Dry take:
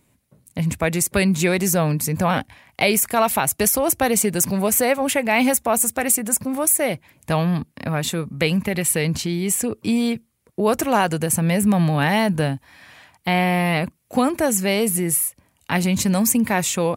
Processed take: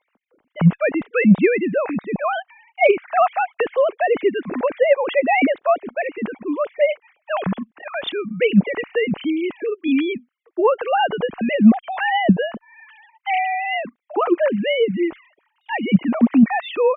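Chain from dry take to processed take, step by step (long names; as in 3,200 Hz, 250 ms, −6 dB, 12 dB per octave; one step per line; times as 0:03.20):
three sine waves on the formant tracks
treble cut that deepens with the level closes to 2,600 Hz, closed at −11.5 dBFS
harmonic generator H 3 −34 dB, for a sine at −3.5 dBFS
level +1.5 dB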